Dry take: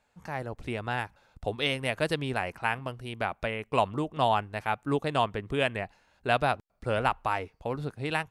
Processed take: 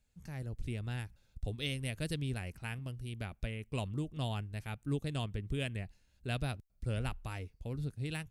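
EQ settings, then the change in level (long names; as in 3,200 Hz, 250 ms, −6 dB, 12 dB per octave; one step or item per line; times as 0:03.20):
guitar amp tone stack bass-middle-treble 10-0-1
high-shelf EQ 5,400 Hz +8.5 dB
+12.0 dB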